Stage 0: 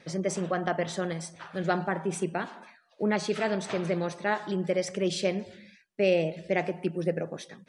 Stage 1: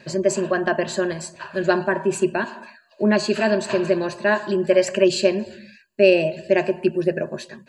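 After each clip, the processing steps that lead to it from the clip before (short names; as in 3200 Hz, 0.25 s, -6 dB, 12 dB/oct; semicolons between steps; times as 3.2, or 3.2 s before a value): spectral gain 4.71–5.05, 550–3200 Hz +6 dB; ripple EQ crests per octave 1.4, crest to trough 13 dB; gain +6 dB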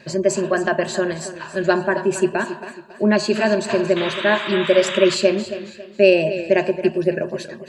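painted sound noise, 3.96–5.15, 920–3900 Hz -30 dBFS; warbling echo 0.274 s, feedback 36%, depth 61 cents, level -13 dB; gain +1.5 dB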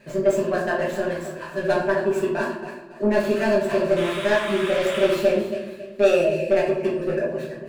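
median filter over 9 samples; soft clip -9.5 dBFS, distortion -15 dB; reverb RT60 0.55 s, pre-delay 5 ms, DRR -4.5 dB; gain -7.5 dB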